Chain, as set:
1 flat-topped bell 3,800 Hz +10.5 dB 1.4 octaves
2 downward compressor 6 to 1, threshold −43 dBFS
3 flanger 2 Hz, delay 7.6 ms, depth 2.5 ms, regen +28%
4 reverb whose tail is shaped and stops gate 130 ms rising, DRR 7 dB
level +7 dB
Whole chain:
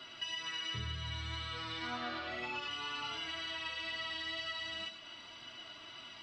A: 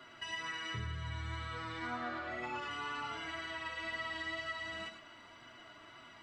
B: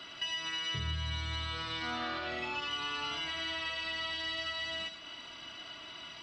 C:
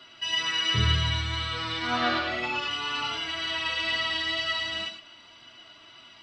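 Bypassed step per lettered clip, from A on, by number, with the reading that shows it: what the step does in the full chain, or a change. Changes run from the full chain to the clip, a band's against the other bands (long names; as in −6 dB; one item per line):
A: 1, 4 kHz band −8.5 dB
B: 3, change in integrated loudness +3.5 LU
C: 2, average gain reduction 9.0 dB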